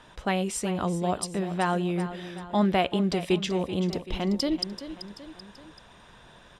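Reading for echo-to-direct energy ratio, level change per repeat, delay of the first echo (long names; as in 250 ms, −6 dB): −11.0 dB, −6.0 dB, 384 ms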